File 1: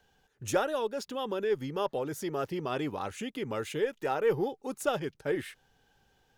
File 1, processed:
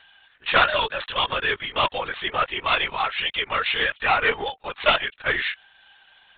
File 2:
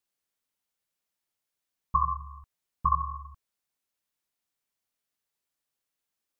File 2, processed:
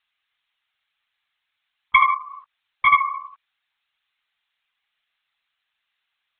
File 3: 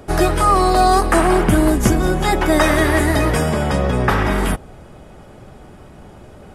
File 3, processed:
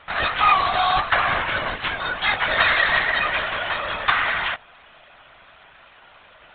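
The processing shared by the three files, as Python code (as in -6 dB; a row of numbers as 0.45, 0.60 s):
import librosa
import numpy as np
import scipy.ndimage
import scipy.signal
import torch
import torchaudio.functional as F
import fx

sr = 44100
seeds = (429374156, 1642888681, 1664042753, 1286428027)

p1 = fx.tracing_dist(x, sr, depth_ms=0.13)
p2 = scipy.signal.sosfilt(scipy.signal.butter(2, 1500.0, 'highpass', fs=sr, output='sos'), p1)
p3 = 10.0 ** (-21.5 / 20.0) * np.tanh(p2 / 10.0 ** (-21.5 / 20.0))
p4 = p2 + (p3 * librosa.db_to_amplitude(-3.5))
p5 = fx.lpc_vocoder(p4, sr, seeds[0], excitation='whisper', order=16)
y = librosa.util.normalize(p5) * 10.0 ** (-3 / 20.0)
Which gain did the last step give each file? +16.5, +13.0, +1.5 dB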